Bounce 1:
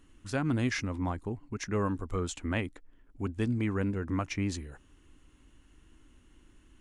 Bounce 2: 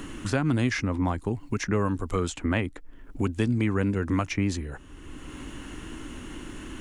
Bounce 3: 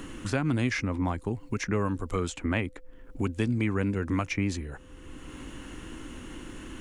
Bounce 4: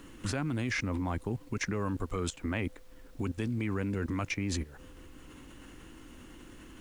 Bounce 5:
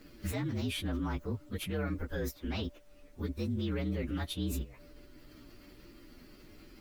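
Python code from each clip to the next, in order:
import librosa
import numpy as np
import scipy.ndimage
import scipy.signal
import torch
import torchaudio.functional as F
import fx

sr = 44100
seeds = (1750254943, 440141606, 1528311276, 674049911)

y1 = fx.band_squash(x, sr, depth_pct=70)
y1 = y1 * librosa.db_to_amplitude(5.5)
y2 = fx.dynamic_eq(y1, sr, hz=2300.0, q=4.9, threshold_db=-49.0, ratio=4.0, max_db=4)
y2 = y2 + 10.0 ** (-56.0 / 20.0) * np.sin(2.0 * np.pi * 510.0 * np.arange(len(y2)) / sr)
y2 = y2 * librosa.db_to_amplitude(-2.5)
y3 = fx.level_steps(y2, sr, step_db=18)
y3 = fx.dmg_noise_colour(y3, sr, seeds[0], colour='pink', level_db=-68.0)
y3 = y3 * librosa.db_to_amplitude(4.0)
y4 = fx.partial_stretch(y3, sr, pct=119)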